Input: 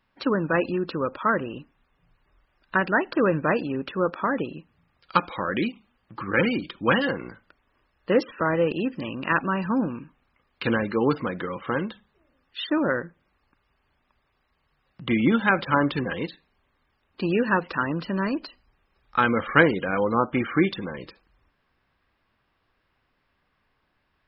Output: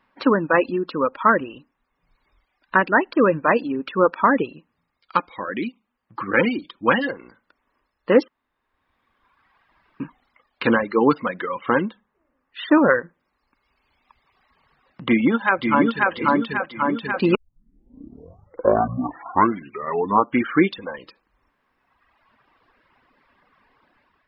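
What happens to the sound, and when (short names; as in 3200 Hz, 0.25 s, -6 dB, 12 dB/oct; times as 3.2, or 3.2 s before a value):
8.28–10 room tone
11.82–12.67 LPF 2300 Hz
15.03–16.11 echo throw 0.54 s, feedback 50%, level -0.5 dB
17.35 tape start 3.11 s
whole clip: reverb removal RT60 1.6 s; graphic EQ 250/500/1000/2000/4000 Hz +9/+6/+10/+7/+3 dB; AGC gain up to 7 dB; gain -2.5 dB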